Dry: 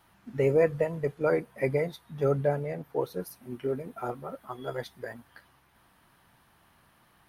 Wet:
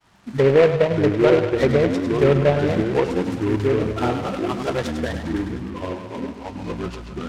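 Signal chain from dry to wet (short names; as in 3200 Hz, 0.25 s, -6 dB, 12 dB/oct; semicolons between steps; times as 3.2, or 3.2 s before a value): CVSD 32 kbps; expander -57 dBFS; in parallel at -6 dB: overloaded stage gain 30 dB; on the sum: treble ducked by the level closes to 1300 Hz, closed at -21 dBFS; on a send: thinning echo 0.101 s, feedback 68%, high-pass 430 Hz, level -7.5 dB; on the sum: echoes that change speed 0.451 s, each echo -5 st, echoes 3, each echo -6 dB; noise-modulated delay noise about 1500 Hz, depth 0.054 ms; gain +7.5 dB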